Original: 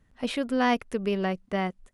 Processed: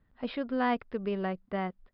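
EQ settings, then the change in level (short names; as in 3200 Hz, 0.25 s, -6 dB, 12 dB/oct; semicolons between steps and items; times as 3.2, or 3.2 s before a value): rippled Chebyshev low-pass 5100 Hz, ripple 3 dB; high shelf 3200 Hz -11 dB; -2.0 dB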